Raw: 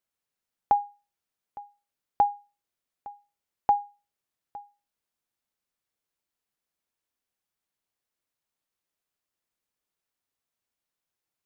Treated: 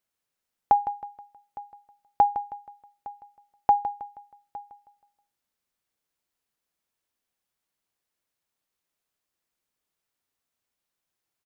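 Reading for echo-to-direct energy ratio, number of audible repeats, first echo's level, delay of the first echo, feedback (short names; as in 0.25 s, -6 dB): -11.5 dB, 3, -12.0 dB, 0.159 s, 39%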